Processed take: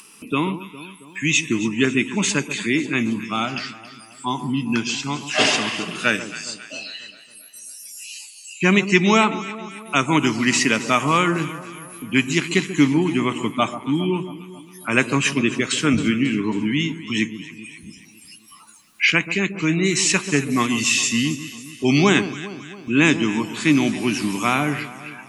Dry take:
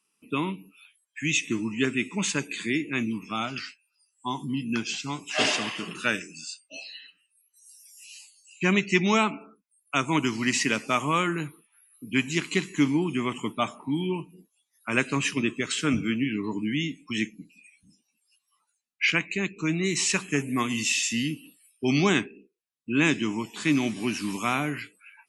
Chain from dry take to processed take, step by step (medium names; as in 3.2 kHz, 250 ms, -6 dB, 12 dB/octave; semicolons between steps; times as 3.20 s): upward compressor, threshold -36 dBFS; on a send: echo whose repeats swap between lows and highs 136 ms, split 1.2 kHz, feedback 71%, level -11.5 dB; on the sum: trim +6.5 dB